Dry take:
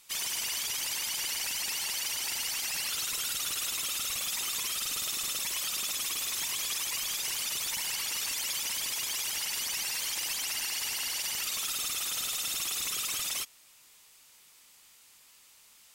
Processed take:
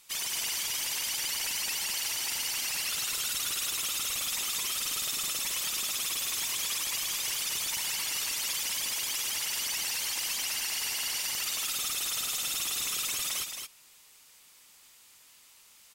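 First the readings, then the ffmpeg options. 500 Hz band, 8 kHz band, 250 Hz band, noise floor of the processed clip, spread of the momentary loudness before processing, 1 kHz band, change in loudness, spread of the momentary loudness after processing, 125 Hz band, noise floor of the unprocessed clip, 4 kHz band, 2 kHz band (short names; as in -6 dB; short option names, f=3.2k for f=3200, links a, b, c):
+1.0 dB, +1.0 dB, +1.0 dB, -58 dBFS, 0 LU, +1.0 dB, +1.0 dB, 0 LU, +1.0 dB, -59 dBFS, +1.0 dB, +1.0 dB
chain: -af "aecho=1:1:220:0.501"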